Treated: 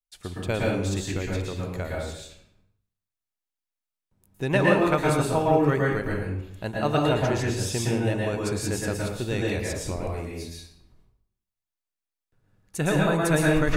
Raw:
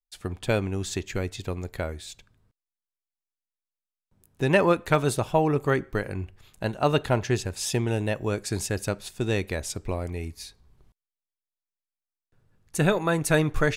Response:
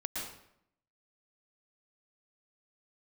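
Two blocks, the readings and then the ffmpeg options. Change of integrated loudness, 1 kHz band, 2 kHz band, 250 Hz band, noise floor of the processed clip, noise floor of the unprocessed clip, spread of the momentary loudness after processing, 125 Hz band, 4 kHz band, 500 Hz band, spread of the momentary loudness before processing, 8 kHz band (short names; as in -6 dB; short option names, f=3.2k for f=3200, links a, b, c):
+1.0 dB, +1.0 dB, +1.5 dB, +2.5 dB, under -85 dBFS, under -85 dBFS, 13 LU, +1.5 dB, +0.5 dB, +1.0 dB, 12 LU, 0.0 dB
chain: -filter_complex "[1:a]atrim=start_sample=2205[a];[0:a][a]afir=irnorm=-1:irlink=0,volume=-1.5dB"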